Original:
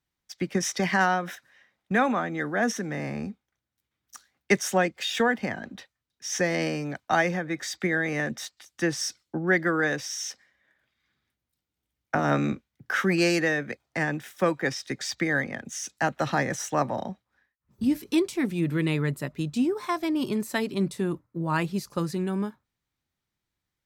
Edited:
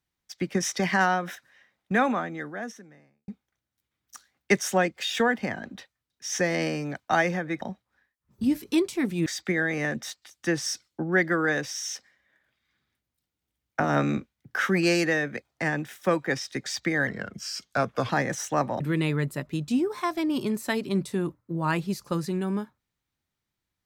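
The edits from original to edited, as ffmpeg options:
-filter_complex "[0:a]asplit=7[a][b][c][d][e][f][g];[a]atrim=end=3.28,asetpts=PTS-STARTPTS,afade=t=out:st=2.09:d=1.19:c=qua[h];[b]atrim=start=3.28:end=7.612,asetpts=PTS-STARTPTS,afade=t=in:d=0.004:c=hsin[i];[c]atrim=start=17.008:end=18.662[j];[d]atrim=start=7.608:end=15.424[k];[e]atrim=start=15.42:end=16.3,asetpts=PTS-STARTPTS,asetrate=37926,aresample=44100[l];[f]atrim=start=16.296:end=17.012[m];[g]atrim=start=18.658[n];[h][i]concat=n=2:v=0:a=1[o];[o][j]acrossfade=d=0.004:c1=hsin:c2=hsin[p];[p][k]acrossfade=d=0.004:c1=hsin:c2=hsin[q];[q][l]acrossfade=d=0.004:c1=hsin:c2=hsin[r];[r][m]acrossfade=d=0.004:c1=hsin:c2=hsin[s];[s][n]acrossfade=d=0.004:c1=hsin:c2=hsin"

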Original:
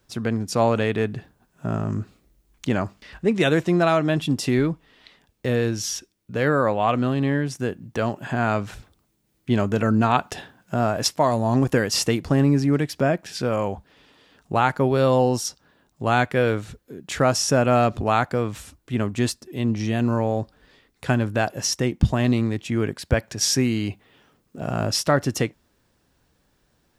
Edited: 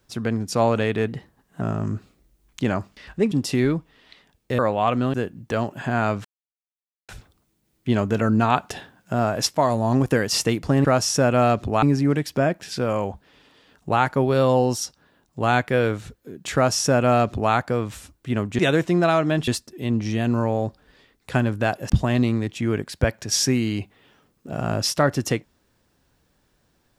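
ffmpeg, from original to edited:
-filter_complex "[0:a]asplit=12[a][b][c][d][e][f][g][h][i][j][k][l];[a]atrim=end=1.084[m];[b]atrim=start=1.08:end=1.67,asetpts=PTS-STARTPTS,asetrate=48510,aresample=44100[n];[c]atrim=start=1.666:end=3.372[o];[d]atrim=start=4.258:end=5.532[p];[e]atrim=start=6.598:end=7.152[q];[f]atrim=start=7.588:end=8.7,asetpts=PTS-STARTPTS,afade=t=out:st=1.108:d=0.004:c=hsin,apad=pad_dur=0.84[r];[g]atrim=start=8.7:end=12.462,asetpts=PTS-STARTPTS,afade=t=in:d=0.004:c=hsin[s];[h]atrim=start=17.178:end=18.162[t];[i]atrim=start=12.458:end=19.222[u];[j]atrim=start=3.368:end=4.262[v];[k]atrim=start=19.218:end=21.642[w];[l]atrim=start=21.988[x];[m][n]acrossfade=d=0.004:c1=hsin:c2=hsin[y];[y][o]acrossfade=d=0.004:c1=hsin:c2=hsin[z];[z][p]acrossfade=d=0.004:c1=hsin:c2=hsin[aa];[aa][q]acrossfade=d=0.004:c1=hsin:c2=hsin[ab];[r][s]concat=n=2:v=0:a=1[ac];[ab][ac]acrossfade=d=0.004:c1=hsin:c2=hsin[ad];[ad][t]acrossfade=d=0.004:c1=hsin:c2=hsin[ae];[ae][u]acrossfade=d=0.004:c1=hsin:c2=hsin[af];[af][v]acrossfade=d=0.004:c1=hsin:c2=hsin[ag];[ag][w]acrossfade=d=0.004:c1=hsin:c2=hsin[ah];[ah][x]acrossfade=d=0.004:c1=hsin:c2=hsin"

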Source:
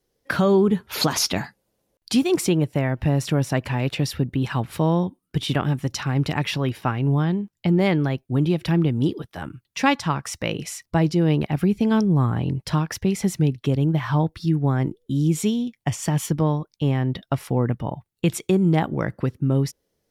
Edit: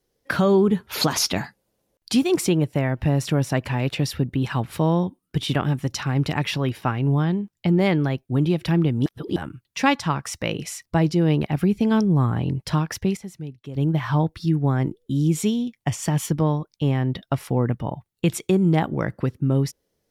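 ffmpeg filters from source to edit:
-filter_complex "[0:a]asplit=5[a][b][c][d][e];[a]atrim=end=9.062[f];[b]atrim=start=9.058:end=9.362,asetpts=PTS-STARTPTS,areverse[g];[c]atrim=start=9.358:end=13.17,asetpts=PTS-STARTPTS,afade=t=out:st=3.432:d=0.38:c=log:silence=0.199526[h];[d]atrim=start=13.17:end=13.75,asetpts=PTS-STARTPTS,volume=-14dB[i];[e]atrim=start=13.75,asetpts=PTS-STARTPTS,afade=t=in:d=0.38:c=log:silence=0.199526[j];[f][g]acrossfade=d=0.004:c1=hsin:c2=hsin[k];[h][i][j]concat=n=3:v=0:a=1[l];[k][l]acrossfade=d=0.004:c1=hsin:c2=hsin"

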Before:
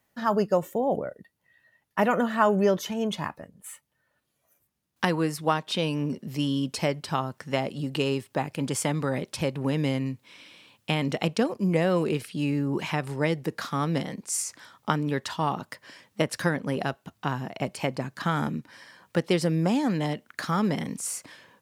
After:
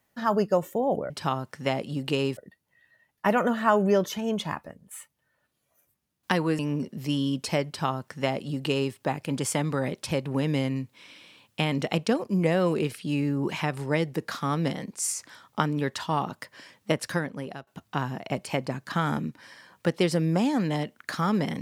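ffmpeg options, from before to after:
-filter_complex "[0:a]asplit=5[a][b][c][d][e];[a]atrim=end=1.102[f];[b]atrim=start=6.968:end=8.242[g];[c]atrim=start=1.098:end=5.322[h];[d]atrim=start=5.888:end=16.97,asetpts=PTS-STARTPTS,afade=t=out:st=10.362:d=0.72:silence=0.158489[i];[e]atrim=start=16.97,asetpts=PTS-STARTPTS,afade=t=in:d=0.004:c=hsin:silence=0.158489[j];[f][g]acrossfade=d=0.004:c1=hsin:c2=hsin[k];[k][h]acrossfade=d=0.004:c1=hsin:c2=hsin[l];[i][j]concat=n=2:v=0:a=1[m];[l][m]acrossfade=d=0.004:c1=hsin:c2=hsin"

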